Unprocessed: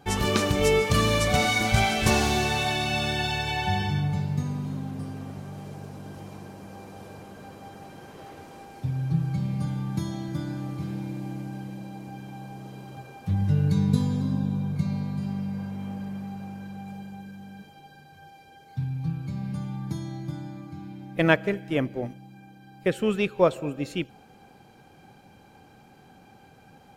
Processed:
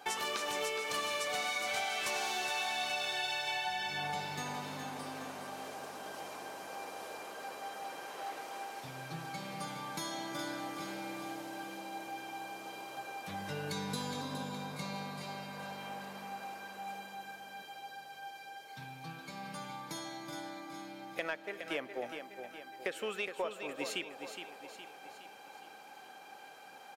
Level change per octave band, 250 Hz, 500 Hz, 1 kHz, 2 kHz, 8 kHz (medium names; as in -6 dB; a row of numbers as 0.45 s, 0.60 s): -17.0 dB, -12.5 dB, -6.5 dB, -7.5 dB, no reading